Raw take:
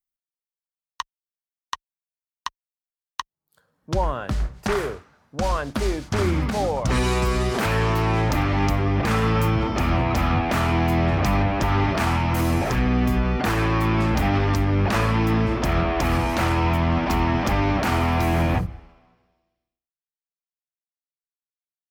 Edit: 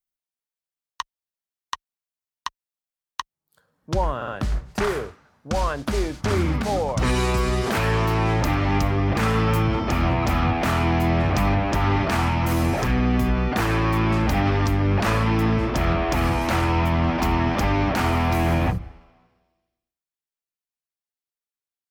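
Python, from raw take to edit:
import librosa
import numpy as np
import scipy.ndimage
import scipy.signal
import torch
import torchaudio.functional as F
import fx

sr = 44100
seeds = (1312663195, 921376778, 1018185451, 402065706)

y = fx.edit(x, sr, fx.stutter(start_s=4.16, slice_s=0.06, count=3), tone=tone)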